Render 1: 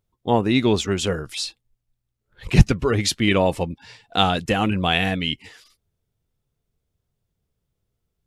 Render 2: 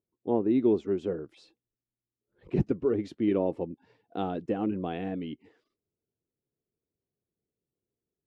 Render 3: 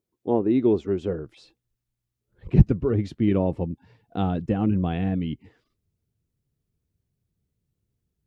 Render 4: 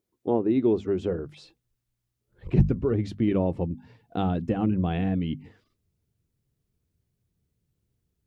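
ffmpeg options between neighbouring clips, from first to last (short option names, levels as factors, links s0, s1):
-af "bandpass=f=340:t=q:w=2:csg=0,volume=0.794"
-af "asubboost=boost=8.5:cutoff=130,volume=1.78"
-filter_complex "[0:a]bandreject=f=50:t=h:w=6,bandreject=f=100:t=h:w=6,bandreject=f=150:t=h:w=6,bandreject=f=200:t=h:w=6,bandreject=f=250:t=h:w=6,asplit=2[s0][s1];[s1]acompressor=threshold=0.0447:ratio=6,volume=1.26[s2];[s0][s2]amix=inputs=2:normalize=0,volume=0.562"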